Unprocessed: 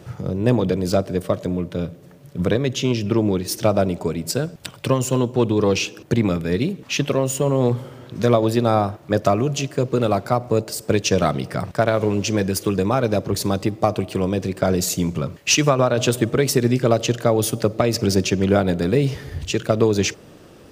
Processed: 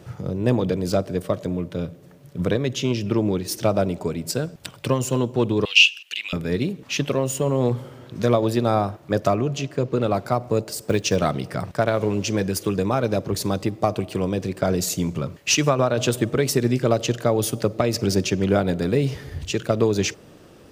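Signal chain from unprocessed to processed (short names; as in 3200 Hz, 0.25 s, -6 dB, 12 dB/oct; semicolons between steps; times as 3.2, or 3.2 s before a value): 5.65–6.33 resonant high-pass 2800 Hz, resonance Q 10; 9.35–10.15 bell 12000 Hz -8.5 dB 1.6 oct; 10.68–11.16 short-mantissa float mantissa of 4-bit; gain -2.5 dB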